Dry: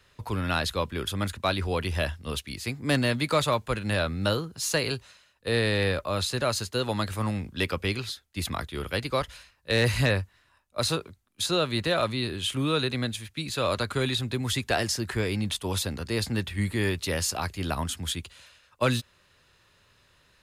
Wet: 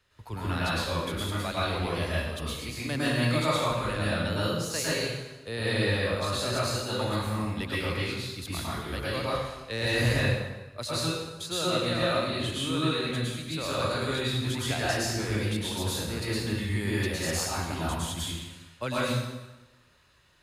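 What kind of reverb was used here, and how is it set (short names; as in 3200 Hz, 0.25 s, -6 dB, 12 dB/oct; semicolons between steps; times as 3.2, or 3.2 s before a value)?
plate-style reverb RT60 1.1 s, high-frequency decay 0.85×, pre-delay 95 ms, DRR -8 dB; gain -9.5 dB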